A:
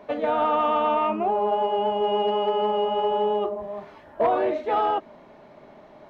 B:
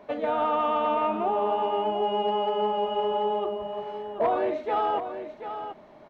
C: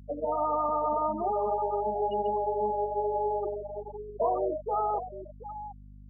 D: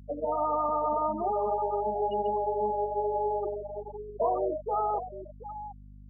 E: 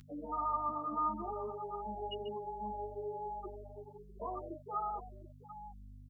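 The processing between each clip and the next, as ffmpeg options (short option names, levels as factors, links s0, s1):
-af "aecho=1:1:737:0.335,volume=0.708"
-af "afftfilt=real='re*gte(hypot(re,im),0.126)':imag='im*gte(hypot(re,im),0.126)':win_size=1024:overlap=0.75,aeval=exprs='val(0)+0.00562*(sin(2*PI*50*n/s)+sin(2*PI*2*50*n/s)/2+sin(2*PI*3*50*n/s)/3+sin(2*PI*4*50*n/s)/4+sin(2*PI*5*50*n/s)/5)':c=same,volume=0.75"
-af anull
-filter_complex "[0:a]firequalizer=gain_entry='entry(300,0);entry(550,-15);entry(1300,5);entry(3300,12)':delay=0.05:min_phase=1,asplit=2[s0][s1];[s1]adelay=9.8,afreqshift=-1.3[s2];[s0][s2]amix=inputs=2:normalize=1,volume=0.794"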